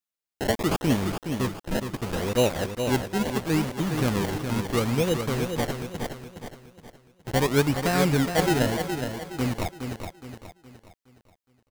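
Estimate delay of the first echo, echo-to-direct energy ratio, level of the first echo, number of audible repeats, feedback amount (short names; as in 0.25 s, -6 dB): 0.417 s, -6.0 dB, -7.0 dB, 4, 40%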